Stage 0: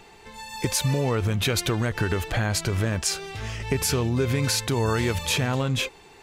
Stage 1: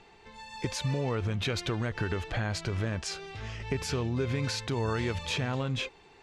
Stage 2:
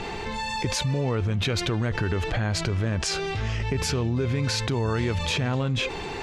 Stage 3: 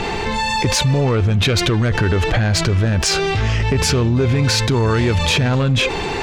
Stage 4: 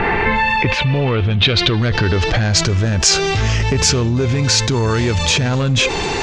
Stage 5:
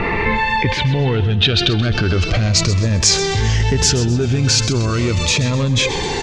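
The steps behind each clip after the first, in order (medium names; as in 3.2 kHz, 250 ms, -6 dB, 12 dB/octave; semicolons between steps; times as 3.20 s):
low-pass 5.3 kHz 12 dB/octave; trim -6.5 dB
bass shelf 390 Hz +4 dB; level flattener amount 70%
sine folder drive 7 dB, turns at -9.5 dBFS
gain riding 0.5 s; low-pass sweep 1.8 kHz -> 6.7 kHz, 0.01–2.71 s
feedback delay 129 ms, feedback 43%, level -13 dB; Shepard-style phaser falling 0.38 Hz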